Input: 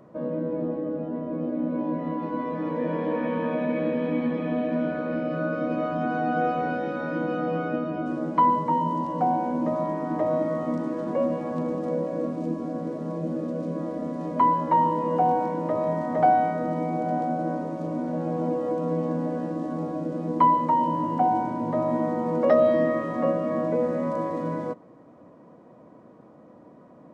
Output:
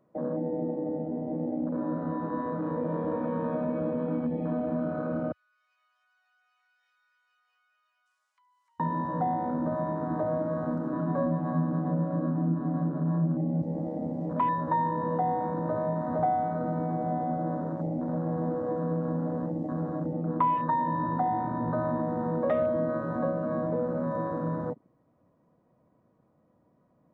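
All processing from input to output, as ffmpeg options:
-filter_complex "[0:a]asettb=1/sr,asplit=3[s0][s1][s2];[s0]atrim=end=5.324[s3];[s1]atrim=start=5.32:end=8.8,asetpts=PTS-STARTPTS,afade=t=in:d=0.004:c=qsin,afade=t=out:st=3.476:d=0.004:c=qsin,highpass=f=1100:w=0.5412,highpass=f=1100:w=1.3066,aderivative,acompressor=threshold=0.00224:ratio=3:attack=3.2:release=140:knee=1:detection=peak[s4];[s2]atrim=start=8.796[s5];[s3][s4]acrossfade=d=0.004:c1=hsin:c2=qsin[s6];[s6][s5]acrossfade=d=0.004:c1=qsin:c2=hsin,asettb=1/sr,asplit=3[s7][s8][s9];[s7]atrim=end=10.924[s10];[s8]atrim=start=10.92:end=13.62,asetpts=PTS-STARTPTS,afade=t=in:d=0.004:c=qsin,afade=t=out:st=2.696:d=0.004:c=qsin,highpass=140,equalizer=f=170:t=q:w=4:g=7,equalizer=f=250:t=q:w=4:g=4,equalizer=f=480:t=q:w=4:g=-8,equalizer=f=1200:t=q:w=4:g=9,lowpass=f=3500:w=0.5412,lowpass=f=3500:w=1.3066,aecho=1:1:6.9:0.96,atrim=end_sample=119070[s11];[s9]atrim=start=13.616[s12];[s10][s11]acrossfade=d=0.004:c1=hsin:c2=qsin[s13];[s13][s12]acrossfade=d=0.004:c1=qsin:c2=hsin,asettb=1/sr,asplit=3[s14][s15][s16];[s14]atrim=end=20.124[s17];[s15]atrim=start=20.12:end=22.01,asetpts=PTS-STARTPTS,afade=t=in:d=0.004:c=qsin,afade=t=out:st=1.886:d=0.004:c=qsin,lowpass=3900,equalizer=f=1200:t=o:w=0.3:g=7.5[s18];[s16]atrim=start=22.006[s19];[s17][s18]acrossfade=d=0.004:c1=hsin:c2=qsin[s20];[s20][s19]acrossfade=d=0.004:c1=qsin:c2=hsin,afwtdn=0.0282,asubboost=boost=3.5:cutoff=140,acompressor=threshold=0.0398:ratio=2"

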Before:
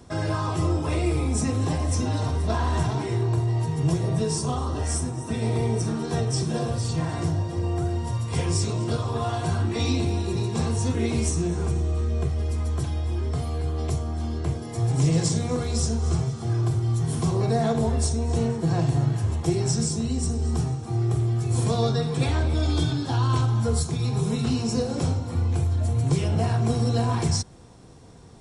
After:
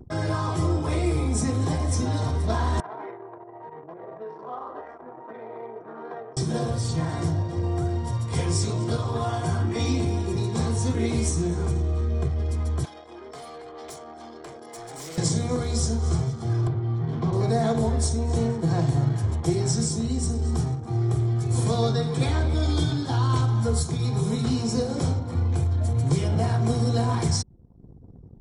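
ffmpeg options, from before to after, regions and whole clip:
-filter_complex "[0:a]asettb=1/sr,asplit=3[s0][s1][s2];[s0]atrim=end=2.804[s3];[s1]atrim=start=2.8:end=6.37,asetpts=PTS-STARTPTS,afade=t=in:d=0.004:c=qsin,afade=t=out:st=3.566:d=0.004:c=qsin,acompressor=threshold=0.0631:ratio=10:attack=3.2:release=140:knee=1:detection=peak,asuperpass=centerf=910:order=4:qfactor=0.7[s4];[s2]atrim=start=6.366[s5];[s3][s4]acrossfade=d=0.004:c1=hsin:c2=qsin[s6];[s6][s5]acrossfade=d=0.004:c1=qsin:c2=hsin,asettb=1/sr,asplit=3[s7][s8][s9];[s7]atrim=end=9.254[s10];[s8]atrim=start=9.25:end=10.38,asetpts=PTS-STARTPTS,afade=t=in:d=0.004:c=qsin,afade=t=out:st=1.126:d=0.004:c=qsin,highpass=50,bandreject=f=4000:w=6.7[s11];[s9]atrim=start=10.376[s12];[s10][s11]acrossfade=d=0.004:c1=hsin:c2=qsin[s13];[s13][s12]acrossfade=d=0.004:c1=qsin:c2=hsin,asettb=1/sr,asplit=3[s14][s15][s16];[s14]atrim=end=12.854[s17];[s15]atrim=start=12.85:end=15.18,asetpts=PTS-STARTPTS,afade=t=in:d=0.004:c=qsin,afade=t=out:st=2.326:d=0.004:c=qsin,highpass=510,volume=59.6,asoftclip=hard,volume=0.0168[s18];[s16]atrim=start=15.176[s19];[s17][s18]acrossfade=d=0.004:c1=hsin:c2=qsin[s20];[s20][s19]acrossfade=d=0.004:c1=qsin:c2=hsin,asettb=1/sr,asplit=3[s21][s22][s23];[s21]atrim=end=16.674[s24];[s22]atrim=start=16.67:end=17.33,asetpts=PTS-STARTPTS,afade=t=in:d=0.004:c=qsin,afade=t=out:st=0.656:d=0.004:c=qsin,highpass=110,lowpass=4200,aemphasis=mode=reproduction:type=50kf[s25];[s23]atrim=start=17.326[s26];[s24][s25]acrossfade=d=0.004:c1=hsin:c2=qsin[s27];[s27][s26]acrossfade=d=0.004:c1=qsin:c2=hsin,bandreject=f=2700:w=7.7,anlmdn=0.158,acompressor=mode=upward:threshold=0.0126:ratio=2.5"

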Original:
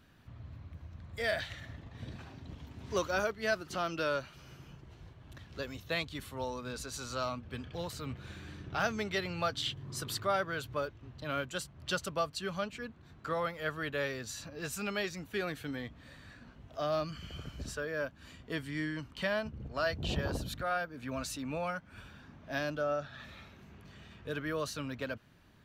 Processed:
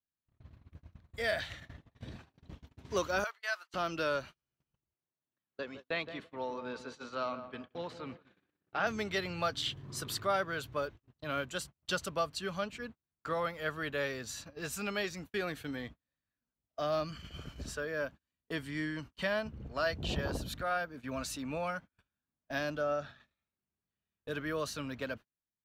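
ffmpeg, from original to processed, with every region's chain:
-filter_complex "[0:a]asettb=1/sr,asplit=3[s0][s1][s2];[s0]atrim=end=3.244[s3];[s1]atrim=start=3.24:end=3.74,asetpts=PTS-STARTPTS,afade=t=in:d=0.004:c=qsin,afade=t=out:st=0.496:d=0.004:c=qsin,highpass=f=870:w=0.5412,highpass=f=870:w=1.3066,highshelf=f=2500:g=-3,bandreject=f=5400:w=28[s4];[s2]atrim=start=3.736[s5];[s3][s4]acrossfade=d=0.004:c1=hsin:c2=qsin[s6];[s6][s5]acrossfade=d=0.004:c1=qsin:c2=hsin,asettb=1/sr,asplit=3[s7][s8][s9];[s7]atrim=end=4.944[s10];[s8]atrim=start=4.94:end=8.87,asetpts=PTS-STARTPTS,afade=t=in:d=0.004:c=qsin,afade=t=out:st=3.926:d=0.004:c=qsin,highpass=200,lowpass=3200,asplit=2[s11][s12];[s12]adelay=169,lowpass=f=1300:p=1,volume=0.355,asplit=2[s13][s14];[s14]adelay=169,lowpass=f=1300:p=1,volume=0.49,asplit=2[s15][s16];[s16]adelay=169,lowpass=f=1300:p=1,volume=0.49,asplit=2[s17][s18];[s18]adelay=169,lowpass=f=1300:p=1,volume=0.49,asplit=2[s19][s20];[s20]adelay=169,lowpass=f=1300:p=1,volume=0.49,asplit=2[s21][s22];[s22]adelay=169,lowpass=f=1300:p=1,volume=0.49[s23];[s11][s13][s15][s17][s19][s21][s23]amix=inputs=7:normalize=0,atrim=end_sample=173313[s24];[s9]atrim=start=8.866[s25];[s10][s24]acrossfade=d=0.004:c1=hsin:c2=qsin[s26];[s26][s25]acrossfade=d=0.004:c1=qsin:c2=hsin,agate=range=0.0112:threshold=0.00562:ratio=16:detection=peak,equalizer=f=110:w=1.2:g=-3"

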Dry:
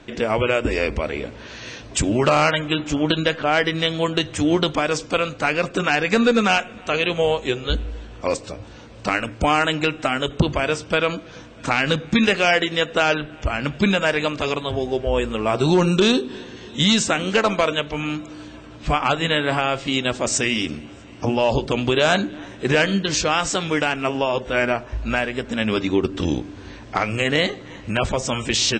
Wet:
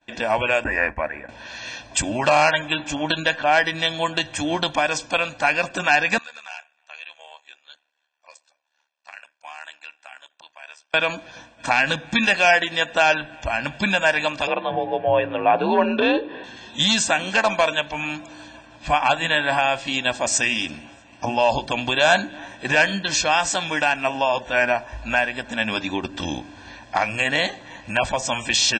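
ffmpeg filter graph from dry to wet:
-filter_complex "[0:a]asettb=1/sr,asplit=3[s0][s1][s2];[s0]atrim=end=0.644[s3];[s1]atrim=start=0.64:end=1.29,asetpts=PTS-STARTPTS,afade=t=in:d=0.004:c=qsin,afade=t=out:st=0.646:d=0.004:c=qsin,agate=range=0.0224:threshold=0.0708:ratio=3:release=100:detection=peak,highshelf=f=2600:t=q:w=3:g=-12.5[s4];[s2]atrim=start=1.286[s5];[s3][s4]acrossfade=d=0.004:c1=hsin:c2=qsin[s6];[s6][s5]acrossfade=d=0.004:c1=qsin:c2=hsin,asettb=1/sr,asplit=3[s7][s8][s9];[s7]atrim=end=6.184[s10];[s8]atrim=start=6.18:end=10.94,asetpts=PTS-STARTPTS,afade=t=in:d=0.004:c=qsin,afade=t=out:st=4.756:d=0.004:c=qsin,highpass=1000,acompressor=threshold=0.00794:ratio=2:attack=3.2:release=140:knee=1:detection=peak,tremolo=f=74:d=0.857[s11];[s9]atrim=start=10.936[s12];[s10][s11]acrossfade=d=0.004:c1=hsin:c2=qsin[s13];[s13][s12]acrossfade=d=0.004:c1=qsin:c2=hsin,asettb=1/sr,asplit=3[s14][s15][s16];[s14]atrim=end=14.474[s17];[s15]atrim=start=14.47:end=16.44,asetpts=PTS-STARTPTS,afade=t=in:d=0.004:c=qsin,afade=t=out:st=1.966:d=0.004:c=qsin,lowpass=f=2800:w=0.5412,lowpass=f=2800:w=1.3066,equalizer=f=390:t=o:w=1.1:g=7.5,afreqshift=50[s18];[s16]atrim=start=16.436[s19];[s17][s18]acrossfade=d=0.004:c1=hsin:c2=qsin[s20];[s20][s19]acrossfade=d=0.004:c1=qsin:c2=hsin,agate=range=0.0224:threshold=0.0141:ratio=3:detection=peak,bass=f=250:g=-13,treble=f=4000:g=-1,aecho=1:1:1.2:0.74"

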